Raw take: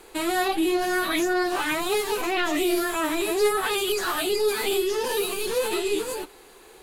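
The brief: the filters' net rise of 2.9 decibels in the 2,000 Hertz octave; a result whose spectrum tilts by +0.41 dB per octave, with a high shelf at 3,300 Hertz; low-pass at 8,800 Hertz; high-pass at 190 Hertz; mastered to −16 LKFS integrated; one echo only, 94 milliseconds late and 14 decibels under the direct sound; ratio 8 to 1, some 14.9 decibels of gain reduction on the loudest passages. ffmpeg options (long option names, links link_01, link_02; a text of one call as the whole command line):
ffmpeg -i in.wav -af "highpass=190,lowpass=8800,equalizer=frequency=2000:width_type=o:gain=6,highshelf=frequency=3300:gain=-7,acompressor=threshold=-35dB:ratio=8,aecho=1:1:94:0.2,volume=21dB" out.wav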